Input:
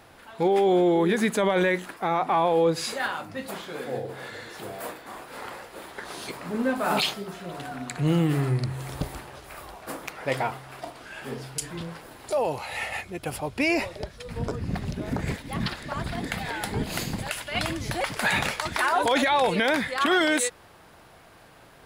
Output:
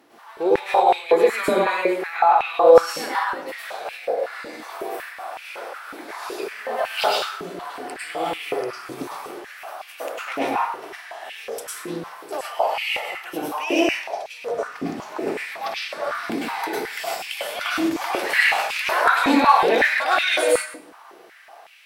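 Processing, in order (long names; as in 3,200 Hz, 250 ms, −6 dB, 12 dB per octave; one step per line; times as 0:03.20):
convolution reverb RT60 0.65 s, pre-delay 93 ms, DRR −7.5 dB
formants moved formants +2 semitones
high-pass on a step sequencer 5.4 Hz 280–2,500 Hz
level −7 dB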